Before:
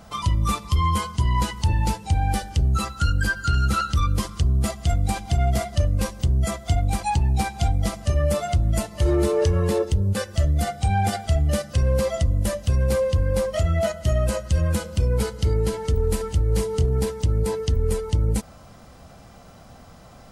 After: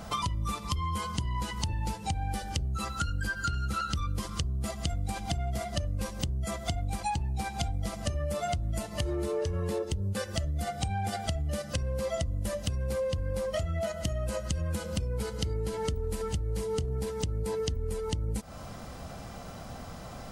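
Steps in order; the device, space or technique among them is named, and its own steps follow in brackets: serial compression, peaks first (compression, threshold -29 dBFS, peak gain reduction 13.5 dB; compression 2.5:1, threshold -33 dBFS, peak gain reduction 5.5 dB); trim +4 dB

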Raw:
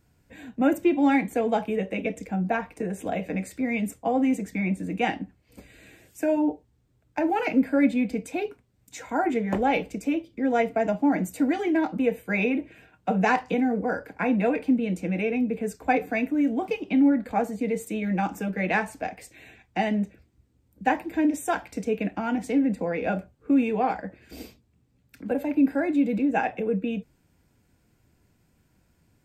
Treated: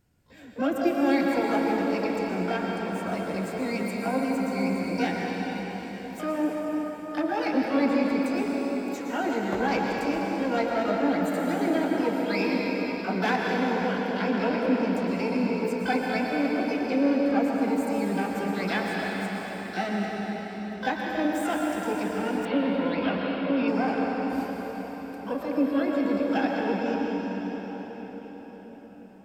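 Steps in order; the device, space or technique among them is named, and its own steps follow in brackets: shimmer-style reverb (harmony voices +12 st -8 dB; reverberation RT60 5.8 s, pre-delay 105 ms, DRR -2 dB); 22.45–23.68 s: resonant high shelf 5 kHz -13 dB, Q 3; trim -5.5 dB

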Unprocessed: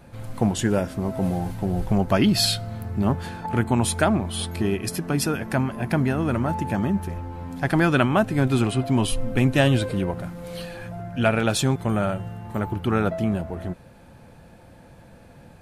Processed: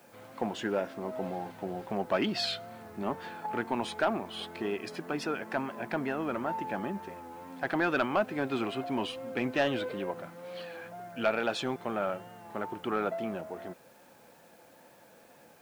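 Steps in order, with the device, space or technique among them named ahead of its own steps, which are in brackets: tape answering machine (band-pass 350–3400 Hz; saturation -12 dBFS, distortion -18 dB; wow and flutter; white noise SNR 31 dB); trim -4.5 dB

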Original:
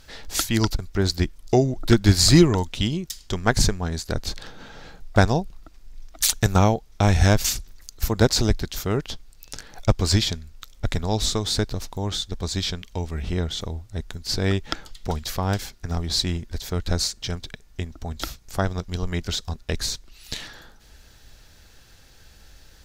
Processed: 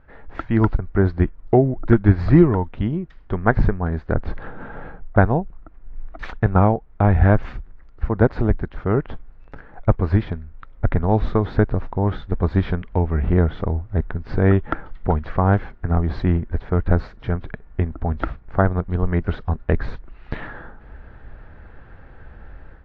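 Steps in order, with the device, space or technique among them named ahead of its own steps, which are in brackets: action camera in a waterproof case (low-pass 1.7 kHz 24 dB/octave; level rider gain up to 11.5 dB; trim -1 dB; AAC 48 kbps 24 kHz)

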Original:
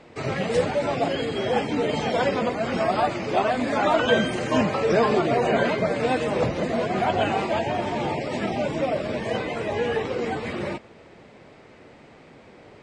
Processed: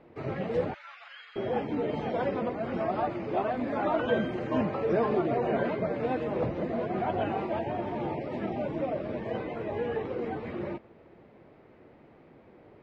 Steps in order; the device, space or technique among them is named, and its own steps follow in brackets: 0.74–1.36 s: elliptic band-pass 1.3–6.7 kHz, stop band 60 dB; phone in a pocket (low-pass 3.9 kHz 12 dB/octave; peaking EQ 340 Hz +4 dB 0.25 oct; treble shelf 2 kHz -11.5 dB); trim -6 dB

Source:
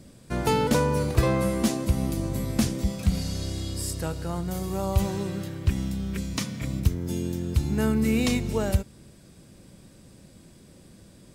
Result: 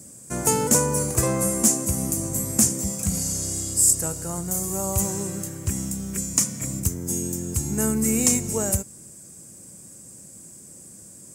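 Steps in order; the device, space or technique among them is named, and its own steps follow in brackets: budget condenser microphone (high-pass 91 Hz 12 dB/octave; resonant high shelf 5.3 kHz +12.5 dB, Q 3)

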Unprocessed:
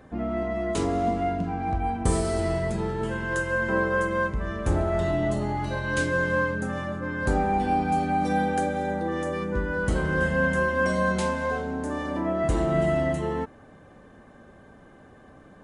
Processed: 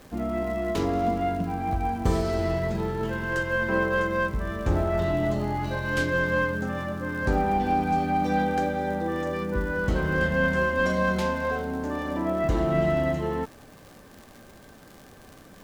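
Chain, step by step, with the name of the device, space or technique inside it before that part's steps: low-pass 6 kHz 24 dB/octave; record under a worn stylus (tracing distortion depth 0.067 ms; crackle 100 per s -37 dBFS; pink noise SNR 30 dB)

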